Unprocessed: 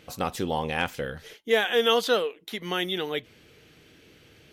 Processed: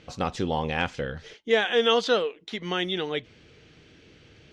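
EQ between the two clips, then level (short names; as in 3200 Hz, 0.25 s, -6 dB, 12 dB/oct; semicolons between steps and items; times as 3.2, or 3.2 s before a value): LPF 6700 Hz 24 dB/oct; low shelf 170 Hz +5 dB; 0.0 dB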